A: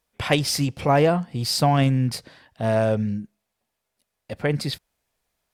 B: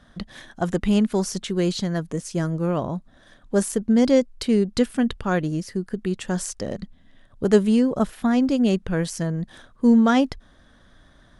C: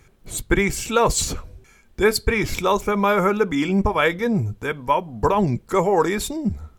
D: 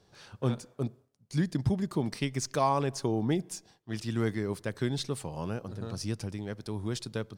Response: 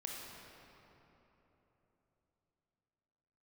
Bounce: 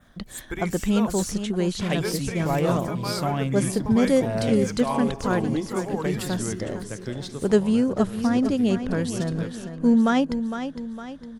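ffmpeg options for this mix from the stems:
-filter_complex "[0:a]adelay=1600,volume=-7.5dB[link_01];[1:a]volume=-2.5dB,asplit=2[link_02][link_03];[link_03]volume=-9.5dB[link_04];[2:a]crystalizer=i=1:c=0,acrusher=bits=8:mix=0:aa=0.5,volume=-14.5dB[link_05];[3:a]adelay=2250,volume=-4.5dB,asplit=3[link_06][link_07][link_08];[link_07]volume=-6.5dB[link_09];[link_08]volume=-20dB[link_10];[4:a]atrim=start_sample=2205[link_11];[link_09][link_11]afir=irnorm=-1:irlink=0[link_12];[link_04][link_10]amix=inputs=2:normalize=0,aecho=0:1:458|916|1374|1832|2290|2748|3206:1|0.47|0.221|0.104|0.0488|0.0229|0.0108[link_13];[link_01][link_02][link_05][link_06][link_12][link_13]amix=inputs=6:normalize=0,adynamicequalizer=threshold=0.00398:dfrequency=4700:dqfactor=2.1:tfrequency=4700:tqfactor=2.1:attack=5:release=100:ratio=0.375:range=1.5:mode=cutabove:tftype=bell"

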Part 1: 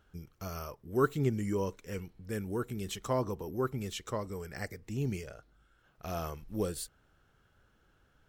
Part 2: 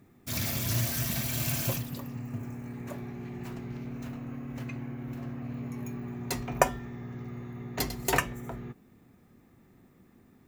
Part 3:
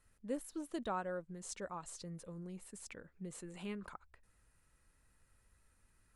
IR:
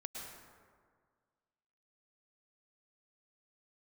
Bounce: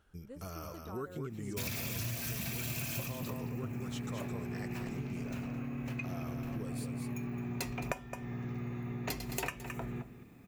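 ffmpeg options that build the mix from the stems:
-filter_complex "[0:a]acompressor=threshold=-37dB:ratio=2.5,volume=-2.5dB,asplit=2[link_01][link_02];[link_02]volume=-5.5dB[link_03];[1:a]equalizer=frequency=2500:width=7.2:gain=9.5,adelay=1300,volume=2dB,asplit=2[link_04][link_05];[link_05]volume=-15.5dB[link_06];[2:a]volume=-10.5dB[link_07];[link_03][link_06]amix=inputs=2:normalize=0,aecho=0:1:216:1[link_08];[link_01][link_04][link_07][link_08]amix=inputs=4:normalize=0,acompressor=threshold=-35dB:ratio=6"

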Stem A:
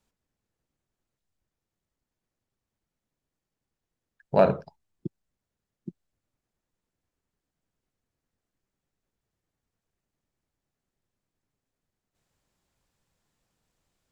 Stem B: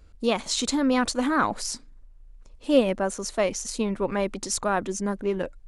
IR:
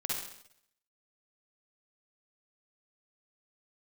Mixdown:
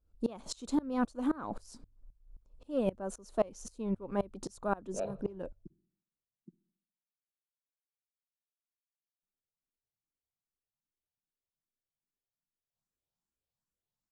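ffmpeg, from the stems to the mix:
-filter_complex "[0:a]asplit=2[link_01][link_02];[link_02]afreqshift=2.5[link_03];[link_01][link_03]amix=inputs=2:normalize=1,adelay=600,volume=-16dB,asplit=3[link_04][link_05][link_06];[link_04]atrim=end=6.71,asetpts=PTS-STARTPTS,afade=type=out:start_time=6.706:duration=0.004:curve=hsin[link_07];[link_05]atrim=start=6.71:end=9.22,asetpts=PTS-STARTPTS,volume=0[link_08];[link_06]atrim=start=9.22,asetpts=PTS-STARTPTS,afade=type=in:duration=0.004:curve=hsin[link_09];[link_07][link_08][link_09]concat=n=3:v=0:a=1,asplit=2[link_10][link_11];[link_11]volume=-21.5dB[link_12];[1:a]equalizer=frequency=4900:width=0.31:gain=-10,acontrast=50,aeval=exprs='val(0)*pow(10,-26*if(lt(mod(-3.8*n/s,1),2*abs(-3.8)/1000),1-mod(-3.8*n/s,1)/(2*abs(-3.8)/1000),(mod(-3.8*n/s,1)-2*abs(-3.8)/1000)/(1-2*abs(-3.8)/1000))/20)':channel_layout=same,volume=-6dB[link_13];[2:a]atrim=start_sample=2205[link_14];[link_12][link_14]afir=irnorm=-1:irlink=0[link_15];[link_10][link_13][link_15]amix=inputs=3:normalize=0,equalizer=frequency=2000:width_type=o:width=0.52:gain=-8.5,bandreject=frequency=47.88:width_type=h:width=4,bandreject=frequency=95.76:width_type=h:width=4"

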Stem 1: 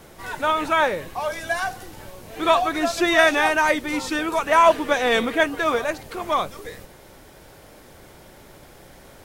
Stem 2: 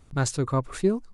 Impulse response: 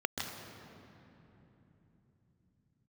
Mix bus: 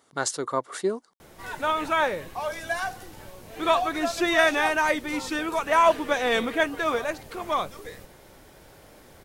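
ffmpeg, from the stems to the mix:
-filter_complex "[0:a]adelay=1200,volume=-4dB[link_01];[1:a]highpass=440,bandreject=frequency=2500:width=5.1,volume=2.5dB[link_02];[link_01][link_02]amix=inputs=2:normalize=0"

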